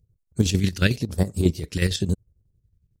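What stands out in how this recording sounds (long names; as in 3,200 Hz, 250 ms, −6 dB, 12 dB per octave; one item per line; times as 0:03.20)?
phaser sweep stages 2, 0.98 Hz, lowest notch 750–2,400 Hz
chopped level 11 Hz, depth 60%, duty 55%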